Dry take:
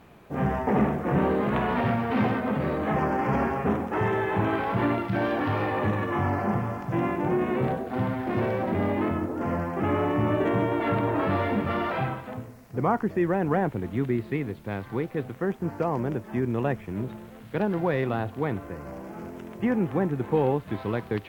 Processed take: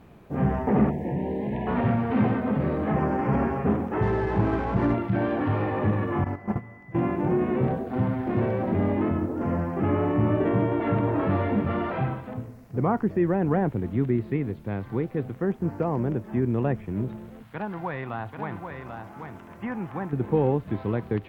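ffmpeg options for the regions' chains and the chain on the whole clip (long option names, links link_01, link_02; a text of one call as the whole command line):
ffmpeg -i in.wav -filter_complex "[0:a]asettb=1/sr,asplit=3[link_01][link_02][link_03];[link_01]atrim=end=0.904[link_04];[link_02]atrim=start=0.9:end=1.67,asetpts=PTS-STARTPTS,afade=type=in:duration=0.004:curve=qsin,afade=type=out:start_time=0.766:duration=0.004:curve=qsin,acompressor=threshold=-26dB:ratio=5:attack=3.2:release=140:knee=1:detection=peak,asuperstop=centerf=1300:order=20:qfactor=2[link_05];[link_03]atrim=start=1.666[link_06];[link_04][link_05]acrossfade=duration=0.004:curve1=hsin:curve2=qsin[link_07];[link_07][link_06]acrossfade=duration=0.004:curve1=qsin:curve2=hsin,asettb=1/sr,asplit=3[link_08][link_09][link_10];[link_08]atrim=end=4.024[link_11];[link_09]atrim=start=4.02:end=4.94,asetpts=PTS-STARTPTS,afade=type=in:duration=0.004:curve=qsin,afade=type=out:start_time=0.916:duration=0.004:curve=qsin,aeval=exprs='val(0)+0.0178*(sin(2*PI*60*n/s)+sin(2*PI*2*60*n/s)/2+sin(2*PI*3*60*n/s)/3+sin(2*PI*4*60*n/s)/4+sin(2*PI*5*60*n/s)/5)':channel_layout=same,adynamicsmooth=sensitivity=7:basefreq=920[link_12];[link_10]atrim=start=4.936[link_13];[link_11][link_12]acrossfade=duration=0.004:curve1=hsin:curve2=qsin[link_14];[link_14][link_13]acrossfade=duration=0.004:curve1=qsin:curve2=hsin,asettb=1/sr,asplit=3[link_15][link_16][link_17];[link_15]atrim=end=6.244[link_18];[link_16]atrim=start=6.24:end=6.95,asetpts=PTS-STARTPTS,afade=type=in:duration=0.004:curve=qsin,afade=type=out:start_time=0.706:duration=0.004:curve=qsin,agate=range=-17dB:threshold=-25dB:ratio=16:release=100:detection=peak,aeval=exprs='val(0)+0.00447*sin(2*PI*2000*n/s)':channel_layout=same[link_19];[link_17]atrim=start=6.946[link_20];[link_18][link_19]acrossfade=duration=0.004:curve1=hsin:curve2=qsin[link_21];[link_21][link_20]acrossfade=duration=0.004:curve1=qsin:curve2=hsin,asettb=1/sr,asplit=3[link_22][link_23][link_24];[link_22]atrim=end=17.434[link_25];[link_23]atrim=start=17.43:end=20.13,asetpts=PTS-STARTPTS,afade=type=in:duration=0.004:curve=qsin,afade=type=out:start_time=2.696:duration=0.004:curve=qsin,lowshelf=frequency=650:width_type=q:width=1.5:gain=-9,aecho=1:1:788:0.473,atrim=end_sample=119070[link_26];[link_24]atrim=start=20.126[link_27];[link_25][link_26]acrossfade=duration=0.004:curve1=hsin:curve2=qsin[link_28];[link_28][link_27]acrossfade=duration=0.004:curve1=qsin:curve2=hsin,lowshelf=frequency=490:gain=8,acrossover=split=3400[link_29][link_30];[link_30]acompressor=threshold=-60dB:ratio=4:attack=1:release=60[link_31];[link_29][link_31]amix=inputs=2:normalize=0,volume=-4dB" out.wav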